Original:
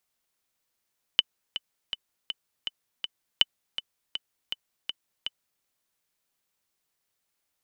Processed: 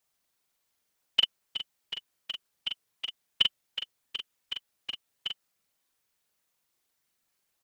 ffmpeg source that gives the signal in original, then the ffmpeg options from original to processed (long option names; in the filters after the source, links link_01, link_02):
-f lavfi -i "aevalsrc='pow(10,(-5-12.5*gte(mod(t,6*60/162),60/162))/20)*sin(2*PI*3010*mod(t,60/162))*exp(-6.91*mod(t,60/162)/0.03)':duration=4.44:sample_rate=44100"
-filter_complex "[0:a]asplit=2[link_01][link_02];[link_02]alimiter=limit=-13dB:level=0:latency=1,volume=0dB[link_03];[link_01][link_03]amix=inputs=2:normalize=0,afftfilt=real='hypot(re,im)*cos(2*PI*random(0))':imag='hypot(re,im)*sin(2*PI*random(1))':win_size=512:overlap=0.75,asplit=2[link_04][link_05];[link_05]adelay=43,volume=-3.5dB[link_06];[link_04][link_06]amix=inputs=2:normalize=0"